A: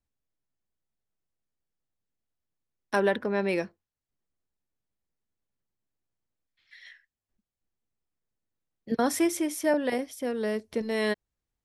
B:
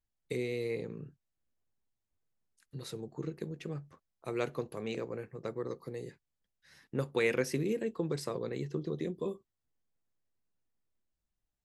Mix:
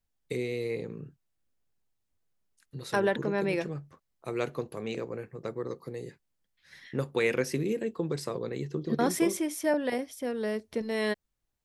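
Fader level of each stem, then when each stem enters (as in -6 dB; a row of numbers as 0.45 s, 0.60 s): -2.0 dB, +2.5 dB; 0.00 s, 0.00 s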